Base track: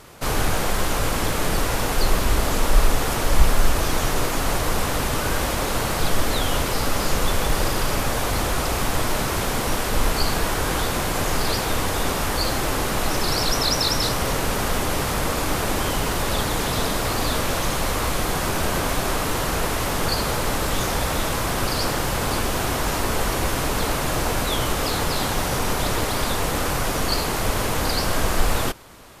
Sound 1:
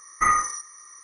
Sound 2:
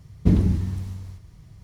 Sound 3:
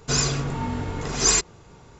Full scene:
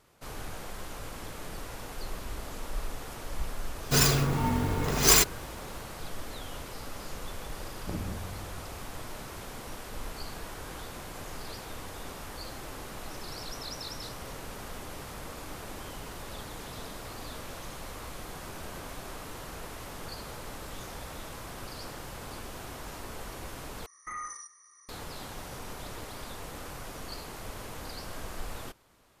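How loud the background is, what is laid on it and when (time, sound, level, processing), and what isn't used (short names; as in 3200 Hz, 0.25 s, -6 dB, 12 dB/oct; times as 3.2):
base track -18.5 dB
3.83 add 3 + clock jitter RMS 0.021 ms
7.62 add 2 -15 dB + core saturation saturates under 390 Hz
23.86 replace with 1 -11.5 dB + limiter -19 dBFS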